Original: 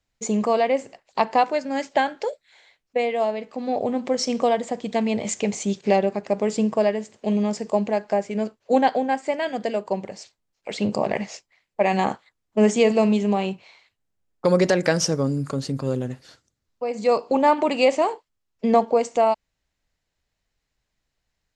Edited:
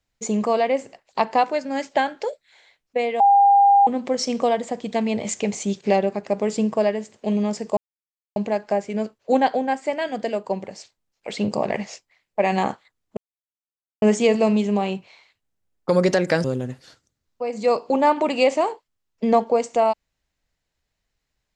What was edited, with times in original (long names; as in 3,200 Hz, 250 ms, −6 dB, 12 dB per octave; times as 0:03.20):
0:03.20–0:03.87: beep over 802 Hz −10.5 dBFS
0:07.77: splice in silence 0.59 s
0:12.58: splice in silence 0.85 s
0:15.00–0:15.85: remove